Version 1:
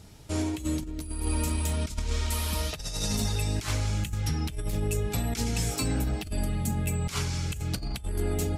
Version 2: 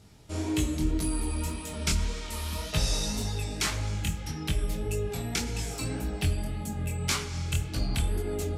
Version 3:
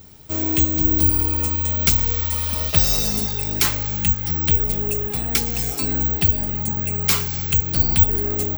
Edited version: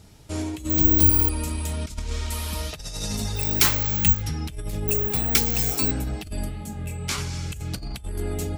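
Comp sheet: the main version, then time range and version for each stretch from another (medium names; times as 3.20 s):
1
0.70–1.29 s: from 3
3.40–4.18 s: from 3, crossfade 0.10 s
4.88–5.91 s: from 3
6.49–7.18 s: from 2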